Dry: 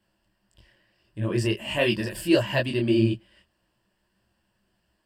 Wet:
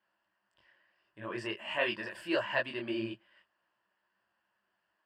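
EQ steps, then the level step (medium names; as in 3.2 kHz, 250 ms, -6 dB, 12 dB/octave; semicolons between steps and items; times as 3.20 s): band-pass filter 1.3 kHz, Q 1.3; 0.0 dB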